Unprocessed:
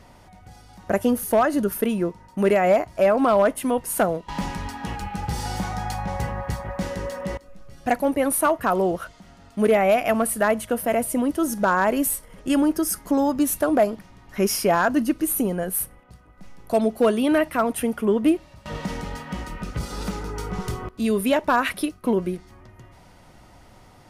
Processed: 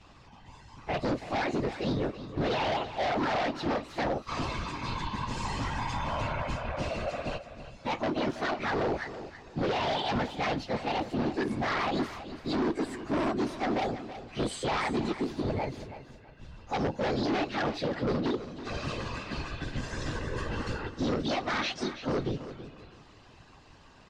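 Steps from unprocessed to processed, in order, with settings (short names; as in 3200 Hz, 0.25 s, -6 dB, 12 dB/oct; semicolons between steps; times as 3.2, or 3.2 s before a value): inharmonic rescaling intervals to 115%; whisperiser; hard clip -22 dBFS, distortion -8 dB; LPF 5400 Hz 24 dB/oct; high shelf 3800 Hz +11 dB; limiter -22 dBFS, peak gain reduction 5.5 dB; bell 180 Hz -5.5 dB 0.24 oct; feedback echo 0.328 s, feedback 26%, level -12.5 dB; gain -1.5 dB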